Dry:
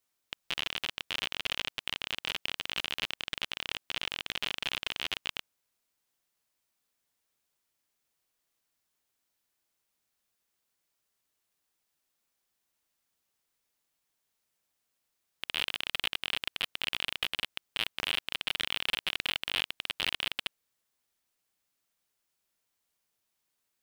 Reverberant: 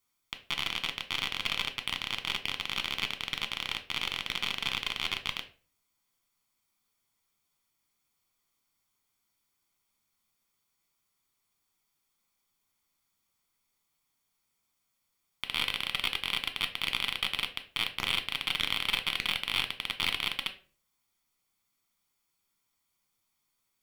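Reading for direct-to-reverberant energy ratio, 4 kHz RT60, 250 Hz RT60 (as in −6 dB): 7.0 dB, 0.30 s, 0.50 s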